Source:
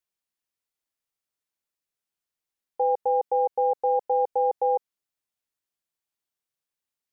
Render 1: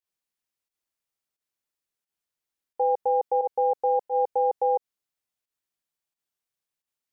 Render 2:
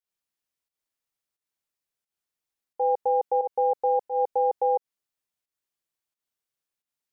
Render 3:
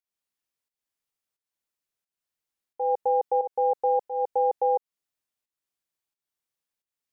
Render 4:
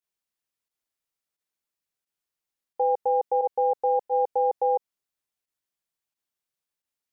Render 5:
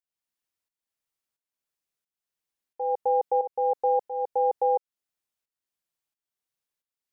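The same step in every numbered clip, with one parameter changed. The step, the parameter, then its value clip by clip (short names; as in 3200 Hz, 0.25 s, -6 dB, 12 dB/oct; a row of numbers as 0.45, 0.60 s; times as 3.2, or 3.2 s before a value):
pump, release: 105, 171, 318, 61, 492 ms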